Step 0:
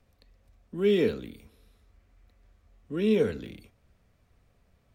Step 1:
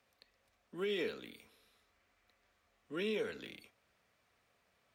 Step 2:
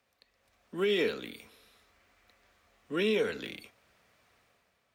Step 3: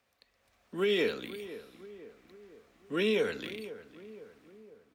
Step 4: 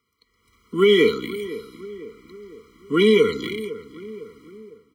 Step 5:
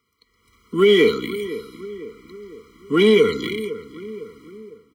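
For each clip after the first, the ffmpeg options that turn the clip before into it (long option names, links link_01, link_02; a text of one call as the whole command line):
ffmpeg -i in.wav -af "highpass=frequency=1300:poles=1,highshelf=frequency=5400:gain=-6.5,alimiter=level_in=7dB:limit=-24dB:level=0:latency=1:release=237,volume=-7dB,volume=3dB" out.wav
ffmpeg -i in.wav -af "dynaudnorm=framelen=110:gausssize=9:maxgain=8.5dB" out.wav
ffmpeg -i in.wav -filter_complex "[0:a]asplit=2[link_01][link_02];[link_02]adelay=505,lowpass=frequency=1500:poles=1,volume=-14dB,asplit=2[link_03][link_04];[link_04]adelay=505,lowpass=frequency=1500:poles=1,volume=0.54,asplit=2[link_05][link_06];[link_06]adelay=505,lowpass=frequency=1500:poles=1,volume=0.54,asplit=2[link_07][link_08];[link_08]adelay=505,lowpass=frequency=1500:poles=1,volume=0.54,asplit=2[link_09][link_10];[link_10]adelay=505,lowpass=frequency=1500:poles=1,volume=0.54[link_11];[link_01][link_03][link_05][link_07][link_09][link_11]amix=inputs=6:normalize=0" out.wav
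ffmpeg -i in.wav -af "dynaudnorm=framelen=110:gausssize=7:maxgain=9dB,aeval=exprs='0.398*(cos(1*acos(clip(val(0)/0.398,-1,1)))-cos(1*PI/2))+0.00501*(cos(7*acos(clip(val(0)/0.398,-1,1)))-cos(7*PI/2))':channel_layout=same,afftfilt=real='re*eq(mod(floor(b*sr/1024/480),2),0)':imag='im*eq(mod(floor(b*sr/1024/480),2),0)':win_size=1024:overlap=0.75,volume=4.5dB" out.wav
ffmpeg -i in.wav -filter_complex "[0:a]asplit=2[link_01][link_02];[link_02]asoftclip=type=hard:threshold=-18dB,volume=-9dB[link_03];[link_01][link_03]amix=inputs=2:normalize=0,asplit=2[link_04][link_05];[link_05]adelay=110,highpass=300,lowpass=3400,asoftclip=type=hard:threshold=-15dB,volume=-23dB[link_06];[link_04][link_06]amix=inputs=2:normalize=0" out.wav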